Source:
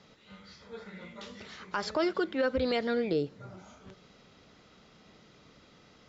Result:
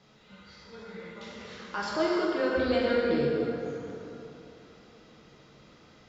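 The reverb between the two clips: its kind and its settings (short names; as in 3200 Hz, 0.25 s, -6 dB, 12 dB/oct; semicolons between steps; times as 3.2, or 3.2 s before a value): plate-style reverb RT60 3.1 s, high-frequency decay 0.6×, DRR -5.5 dB; gain -4 dB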